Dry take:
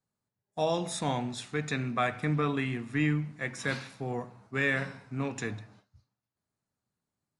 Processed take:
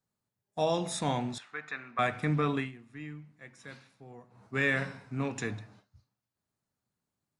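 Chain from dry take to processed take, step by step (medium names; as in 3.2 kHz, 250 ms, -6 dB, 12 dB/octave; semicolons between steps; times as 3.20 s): 1.38–1.99 s: band-pass filter 1.4 kHz, Q 1.5; 2.57–4.44 s: dip -15.5 dB, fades 0.15 s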